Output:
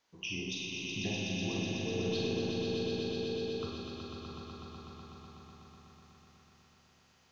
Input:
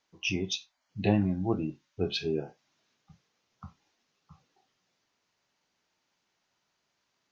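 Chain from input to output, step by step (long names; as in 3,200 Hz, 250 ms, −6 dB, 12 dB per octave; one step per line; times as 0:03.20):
downward compressor, threshold −39 dBFS, peak gain reduction 18.5 dB
echo that builds up and dies away 124 ms, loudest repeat 5, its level −4.5 dB
four-comb reverb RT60 1.1 s, combs from 33 ms, DRR −1 dB
0:01.85–0:03.65: steady tone 450 Hz −36 dBFS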